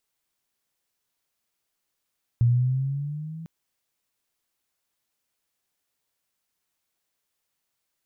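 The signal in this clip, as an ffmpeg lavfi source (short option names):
-f lavfi -i "aevalsrc='pow(10,(-15-20*t/1.05)/20)*sin(2*PI*117*1.05/(6*log(2)/12)*(exp(6*log(2)/12*t/1.05)-1))':d=1.05:s=44100"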